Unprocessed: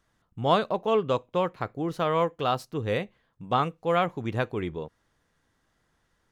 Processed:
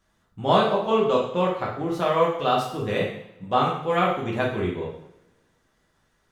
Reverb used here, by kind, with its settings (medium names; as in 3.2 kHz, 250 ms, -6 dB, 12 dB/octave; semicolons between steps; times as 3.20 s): two-slope reverb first 0.67 s, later 1.8 s, from -23 dB, DRR -4.5 dB; trim -1.5 dB